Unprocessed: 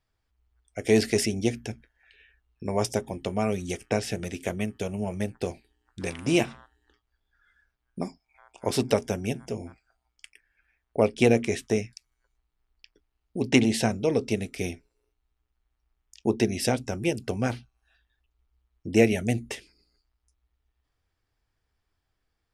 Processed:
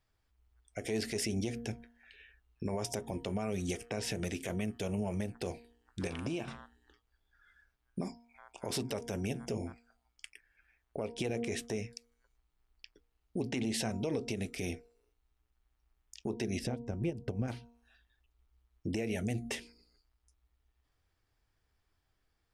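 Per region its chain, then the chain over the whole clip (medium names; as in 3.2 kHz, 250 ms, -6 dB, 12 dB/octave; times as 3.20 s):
6.07–6.48 s: treble shelf 5.4 kHz -8 dB + compression 16:1, threshold -32 dBFS + band-stop 2 kHz, Q 7.5
16.59–17.48 s: tilt EQ -3 dB/octave + transient shaper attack +7 dB, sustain -1 dB + upward expansion, over -26 dBFS
whole clip: de-hum 235.7 Hz, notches 4; compression 6:1, threshold -26 dBFS; peak limiter -25 dBFS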